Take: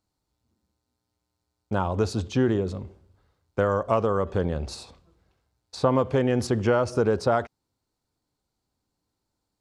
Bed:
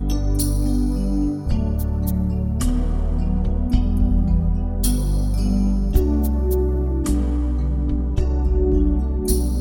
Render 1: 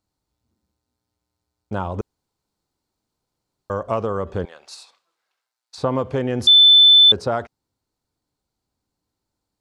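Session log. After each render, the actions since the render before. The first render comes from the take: 2.01–3.70 s: room tone; 4.45–5.78 s: high-pass 1.1 kHz; 6.47–7.12 s: bleep 3.52 kHz -7 dBFS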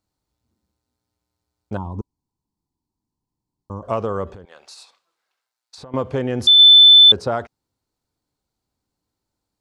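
1.77–3.83 s: FFT filter 290 Hz 0 dB, 580 Hz -16 dB, 980 Hz -2 dB, 1.6 kHz -29 dB, 5.1 kHz -10 dB; 4.33–5.94 s: compression, threshold -37 dBFS; 6.59–7.12 s: treble shelf 4.2 kHz +5.5 dB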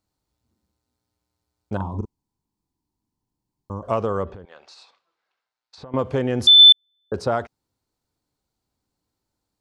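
1.76–3.72 s: doubling 41 ms -6 dB; 4.23–5.99 s: distance through air 130 m; 6.72–7.14 s: rippled Chebyshev low-pass 1.8 kHz, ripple 3 dB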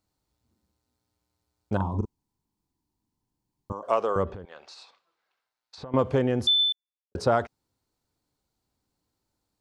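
3.72–4.16 s: high-pass 440 Hz; 5.95–7.15 s: studio fade out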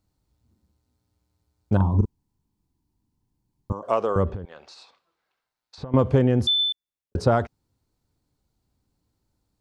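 bass shelf 250 Hz +11 dB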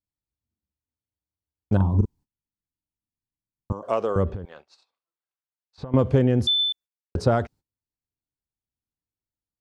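gate -45 dBFS, range -23 dB; dynamic bell 1 kHz, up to -4 dB, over -37 dBFS, Q 1.6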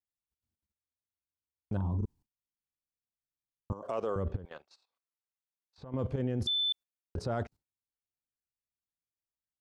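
level held to a coarse grid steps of 15 dB; peak limiter -24.5 dBFS, peak gain reduction 11.5 dB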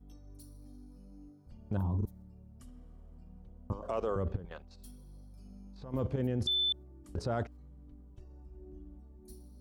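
add bed -32.5 dB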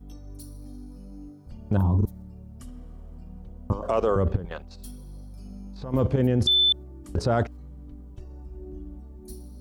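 trim +10.5 dB

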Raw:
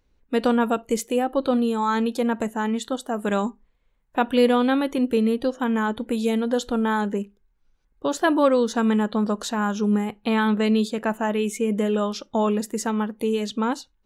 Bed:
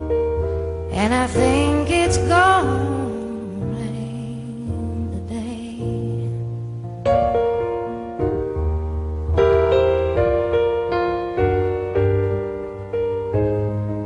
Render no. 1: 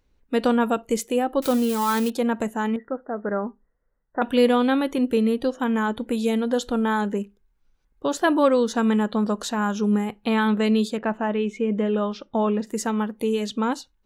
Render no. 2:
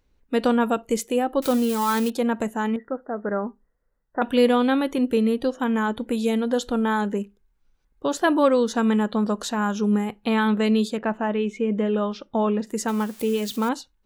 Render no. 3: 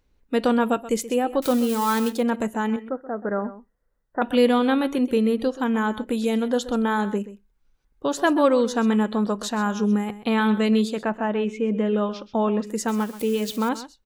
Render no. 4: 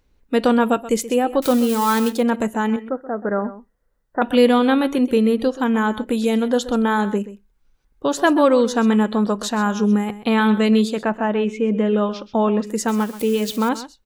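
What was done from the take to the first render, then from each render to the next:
1.42–2.10 s: zero-crossing glitches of -21 dBFS; 2.76–4.22 s: rippled Chebyshev low-pass 2 kHz, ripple 6 dB; 10.97–12.67 s: distance through air 200 m
12.88–13.69 s: zero-crossing glitches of -29 dBFS
delay 129 ms -15 dB
trim +4 dB; peak limiter -3 dBFS, peak gain reduction 1.5 dB

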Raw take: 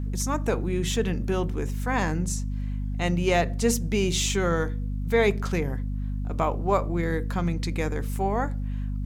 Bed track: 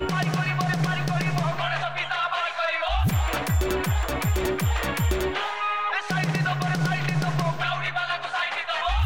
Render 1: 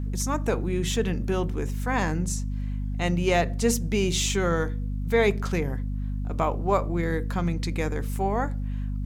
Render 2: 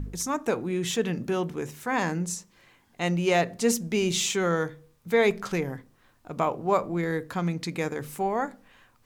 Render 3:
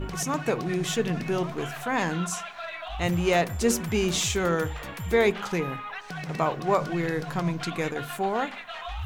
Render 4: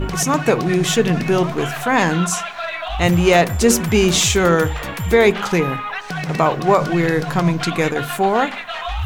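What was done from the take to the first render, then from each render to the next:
no audible change
de-hum 50 Hz, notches 5
add bed track -11 dB
trim +10.5 dB; peak limiter -3 dBFS, peak gain reduction 3 dB

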